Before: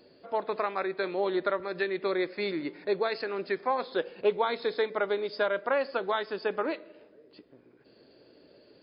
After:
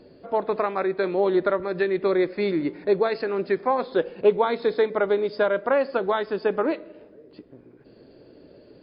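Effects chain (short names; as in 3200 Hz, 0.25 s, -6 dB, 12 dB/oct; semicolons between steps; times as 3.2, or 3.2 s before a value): tilt -2.5 dB/oct; gain +4.5 dB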